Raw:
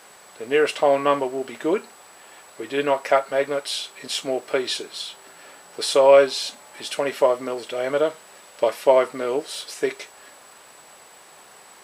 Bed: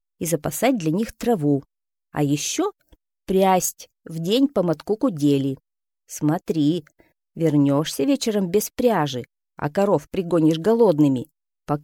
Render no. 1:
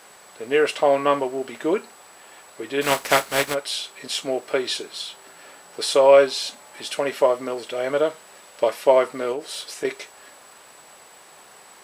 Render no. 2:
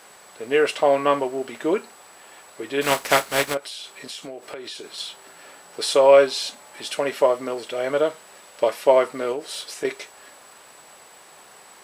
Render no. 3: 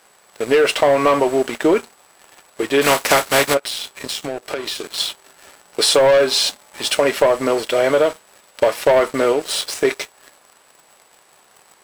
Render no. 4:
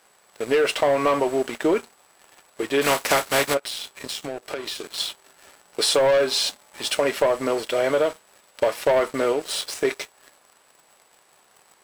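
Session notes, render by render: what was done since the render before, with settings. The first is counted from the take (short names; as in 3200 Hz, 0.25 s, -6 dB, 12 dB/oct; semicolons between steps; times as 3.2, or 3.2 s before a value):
2.81–3.53 spectral contrast lowered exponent 0.48; 9.32–9.85 compressor 3:1, threshold -26 dBFS
3.57–4.98 compressor, threshold -32 dBFS
sample leveller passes 3; compressor, threshold -11 dBFS, peak gain reduction 6.5 dB
gain -5.5 dB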